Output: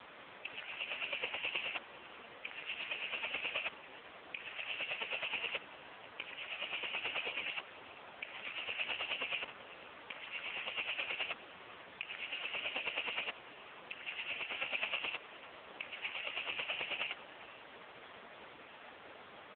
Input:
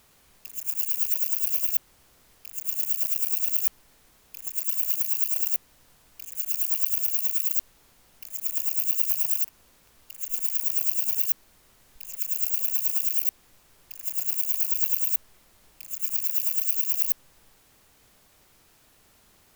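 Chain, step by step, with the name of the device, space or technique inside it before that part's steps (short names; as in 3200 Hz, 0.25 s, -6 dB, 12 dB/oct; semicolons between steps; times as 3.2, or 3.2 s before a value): satellite phone (BPF 320–3300 Hz; echo 0.495 s -19.5 dB; gain +17.5 dB; AMR-NB 5.15 kbps 8000 Hz)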